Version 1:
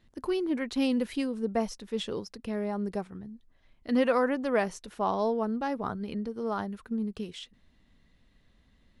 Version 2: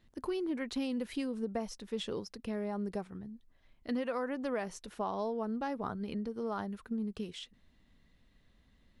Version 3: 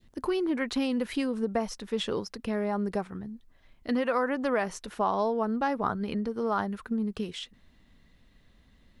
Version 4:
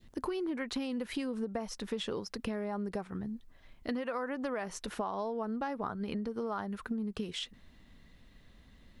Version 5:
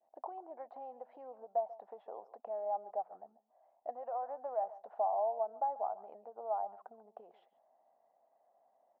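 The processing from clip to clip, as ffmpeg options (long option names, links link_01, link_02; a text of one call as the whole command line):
ffmpeg -i in.wav -af "acompressor=threshold=-29dB:ratio=6,volume=-2.5dB" out.wav
ffmpeg -i in.wav -af "adynamicequalizer=threshold=0.00398:dfrequency=1300:dqfactor=0.74:tfrequency=1300:tqfactor=0.74:attack=5:release=100:ratio=0.375:range=2.5:mode=boostabove:tftype=bell,volume=6dB" out.wav
ffmpeg -i in.wav -af "acompressor=threshold=-35dB:ratio=6,volume=2dB" out.wav
ffmpeg -i in.wav -af "asuperpass=centerf=720:order=4:qfactor=3.7,aecho=1:1:140:0.133,volume=8.5dB" out.wav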